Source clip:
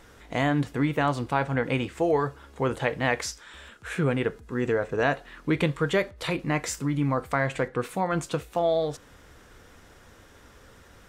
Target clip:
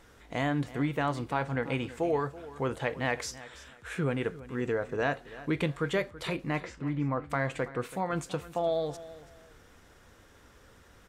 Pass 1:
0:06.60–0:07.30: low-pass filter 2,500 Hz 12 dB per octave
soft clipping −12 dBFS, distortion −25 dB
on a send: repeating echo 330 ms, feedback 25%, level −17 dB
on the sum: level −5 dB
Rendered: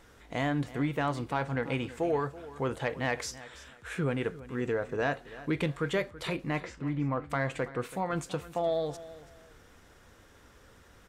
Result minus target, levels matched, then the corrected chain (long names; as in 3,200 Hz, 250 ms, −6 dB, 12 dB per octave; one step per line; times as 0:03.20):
soft clipping: distortion +12 dB
0:06.60–0:07.30: low-pass filter 2,500 Hz 12 dB per octave
soft clipping −5.5 dBFS, distortion −37 dB
on a send: repeating echo 330 ms, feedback 25%, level −17 dB
on the sum: level −5 dB